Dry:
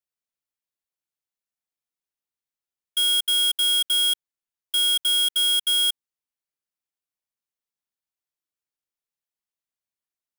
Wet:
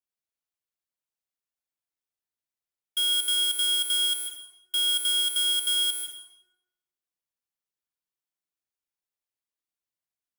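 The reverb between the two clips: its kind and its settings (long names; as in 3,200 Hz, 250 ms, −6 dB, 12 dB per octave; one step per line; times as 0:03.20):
dense smooth reverb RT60 0.92 s, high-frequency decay 0.7×, pre-delay 115 ms, DRR 5 dB
level −4 dB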